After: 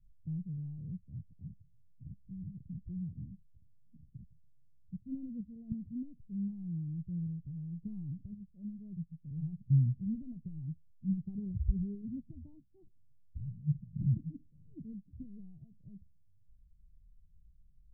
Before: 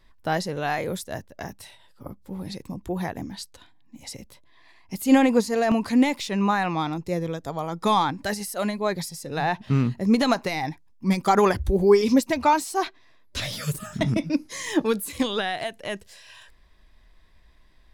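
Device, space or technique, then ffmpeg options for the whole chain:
the neighbour's flat through the wall: -af "lowpass=f=150:w=0.5412,lowpass=f=150:w=1.3066,equalizer=f=160:t=o:w=0.77:g=4.5,volume=-4.5dB"

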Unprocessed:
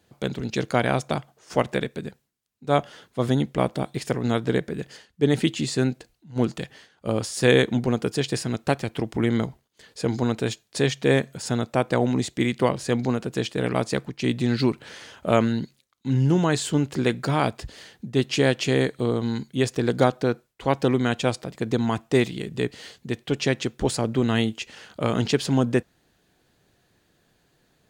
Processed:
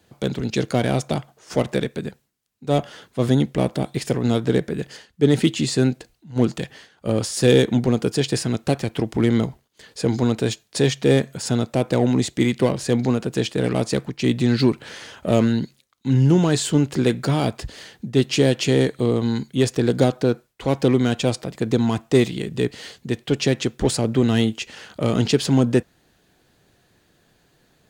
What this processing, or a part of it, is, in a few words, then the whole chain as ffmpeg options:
one-band saturation: -filter_complex "[0:a]acrossover=split=570|3100[a][b][c];[b]asoftclip=type=tanh:threshold=-31.5dB[d];[a][d][c]amix=inputs=3:normalize=0,volume=4.5dB"

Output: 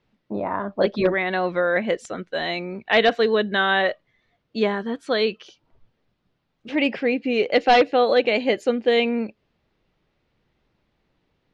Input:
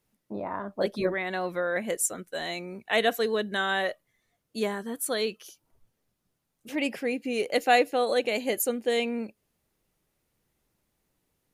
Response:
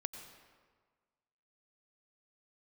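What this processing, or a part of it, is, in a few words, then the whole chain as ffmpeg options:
synthesiser wavefolder: -af "aeval=exprs='0.158*(abs(mod(val(0)/0.158+3,4)-2)-1)':c=same,lowpass=f=4.2k:w=0.5412,lowpass=f=4.2k:w=1.3066,volume=7.5dB"

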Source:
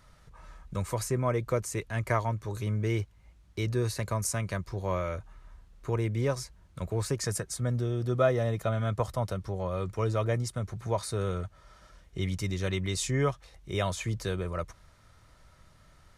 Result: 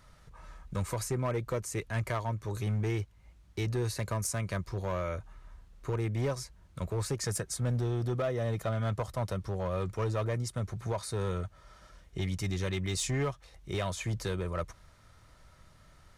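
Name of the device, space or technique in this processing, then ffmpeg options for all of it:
limiter into clipper: -af "alimiter=limit=-20.5dB:level=0:latency=1:release=366,asoftclip=type=hard:threshold=-25.5dB"

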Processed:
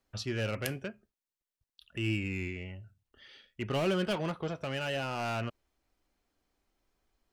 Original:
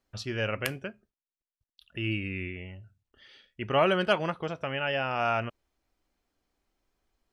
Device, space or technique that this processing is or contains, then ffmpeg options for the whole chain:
one-band saturation: -filter_complex "[0:a]acrossover=split=400|3500[a][b][c];[b]asoftclip=type=tanh:threshold=-34.5dB[d];[a][d][c]amix=inputs=3:normalize=0"

